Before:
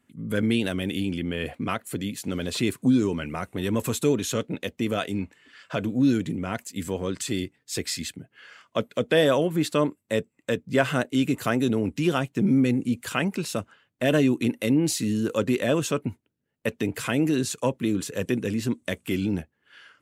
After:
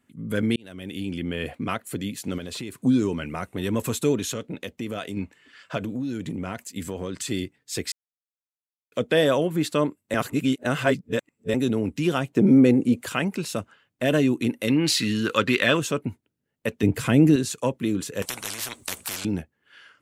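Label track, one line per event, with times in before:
0.560000	1.260000	fade in
2.380000	2.830000	compressor, threshold -30 dBFS
4.310000	5.170000	compressor 2:1, threshold -30 dBFS
5.770000	7.290000	compressor 12:1, threshold -25 dBFS
7.920000	8.920000	mute
10.140000	11.540000	reverse
12.280000	13.060000	bell 540 Hz +10 dB 2.2 oct
14.680000	15.770000	band shelf 2300 Hz +11 dB 2.5 oct
16.830000	17.360000	low shelf 340 Hz +11.5 dB
18.220000	19.250000	spectral compressor 10:1

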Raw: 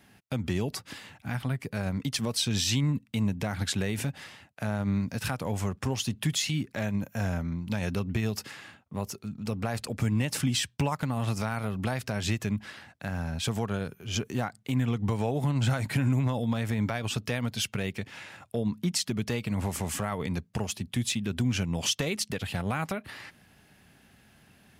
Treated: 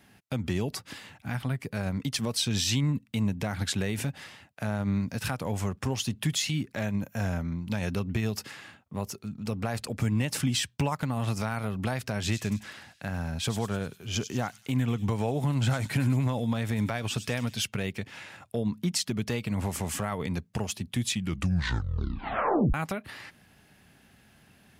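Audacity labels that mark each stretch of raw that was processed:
12.120000	17.570000	thin delay 99 ms, feedback 51%, high-pass 4500 Hz, level -6 dB
21.070000	21.070000	tape stop 1.67 s

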